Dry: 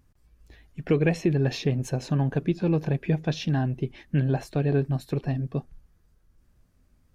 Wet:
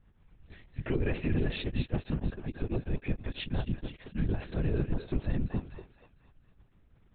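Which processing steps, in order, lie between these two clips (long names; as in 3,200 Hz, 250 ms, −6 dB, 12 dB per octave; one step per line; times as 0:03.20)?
dynamic equaliser 700 Hz, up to −4 dB, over −40 dBFS, Q 0.83
brickwall limiter −21.5 dBFS, peak gain reduction 9 dB
feedback echo with a high-pass in the loop 234 ms, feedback 46%, high-pass 750 Hz, level −5.5 dB
linear-prediction vocoder at 8 kHz whisper
0:01.64–0:04.29: tremolo along a rectified sine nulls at 6.2 Hz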